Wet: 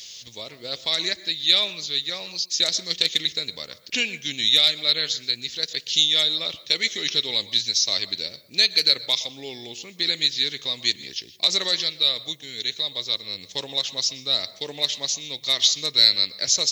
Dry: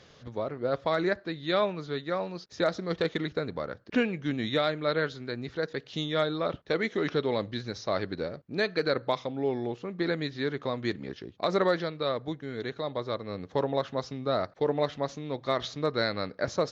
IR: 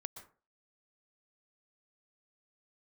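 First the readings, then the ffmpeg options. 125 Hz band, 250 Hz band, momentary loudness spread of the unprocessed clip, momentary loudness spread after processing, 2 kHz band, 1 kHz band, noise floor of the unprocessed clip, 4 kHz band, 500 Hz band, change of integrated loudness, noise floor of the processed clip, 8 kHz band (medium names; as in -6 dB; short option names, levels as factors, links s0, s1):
-9.0 dB, -9.0 dB, 8 LU, 13 LU, +4.0 dB, -8.5 dB, -55 dBFS, +20.0 dB, -8.5 dB, +9.5 dB, -48 dBFS, no reading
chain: -filter_complex "[0:a]aemphasis=mode=production:type=75kf,aexciter=amount=12.3:drive=5.2:freq=2200,asplit=2[s0][s1];[1:a]atrim=start_sample=2205[s2];[s1][s2]afir=irnorm=-1:irlink=0,volume=0.794[s3];[s0][s3]amix=inputs=2:normalize=0,volume=0.237"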